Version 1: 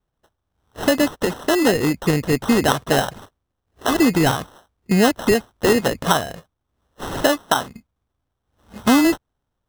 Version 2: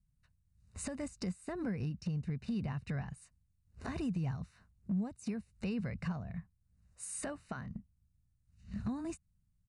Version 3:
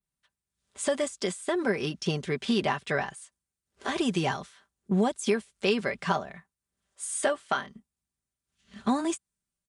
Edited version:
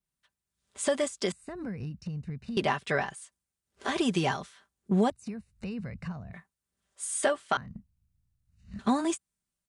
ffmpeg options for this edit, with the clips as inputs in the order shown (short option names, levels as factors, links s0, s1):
-filter_complex "[1:a]asplit=3[s0][s1][s2];[2:a]asplit=4[s3][s4][s5][s6];[s3]atrim=end=1.322[s7];[s0]atrim=start=1.318:end=2.572[s8];[s4]atrim=start=2.568:end=5.102[s9];[s1]atrim=start=5.098:end=6.332[s10];[s5]atrim=start=6.328:end=7.572[s11];[s2]atrim=start=7.568:end=8.792[s12];[s6]atrim=start=8.788[s13];[s7][s8]acrossfade=d=0.004:c1=hsin:c2=hsin[s14];[s14][s9]acrossfade=d=0.004:c1=hsin:c2=hsin[s15];[s15][s10]acrossfade=d=0.004:c1=hsin:c2=hsin[s16];[s16][s11]acrossfade=d=0.004:c1=hsin:c2=hsin[s17];[s17][s12]acrossfade=d=0.004:c1=hsin:c2=hsin[s18];[s18][s13]acrossfade=d=0.004:c1=hsin:c2=hsin"